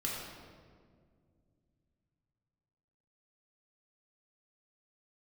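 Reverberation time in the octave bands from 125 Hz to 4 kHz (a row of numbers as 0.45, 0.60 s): 4.1, 3.3, 2.4, 1.7, 1.4, 1.1 s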